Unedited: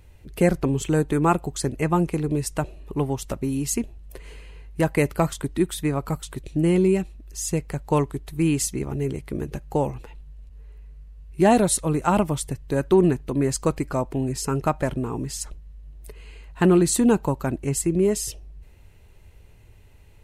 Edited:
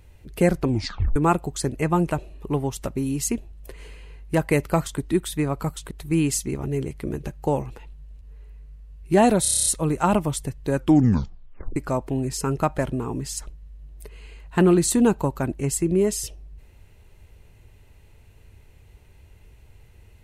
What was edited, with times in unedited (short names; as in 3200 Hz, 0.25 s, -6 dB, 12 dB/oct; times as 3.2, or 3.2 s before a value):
0.68 tape stop 0.48 s
2.11–2.57 cut
6.37–8.19 cut
11.7 stutter 0.03 s, 9 plays
12.79 tape stop 1.01 s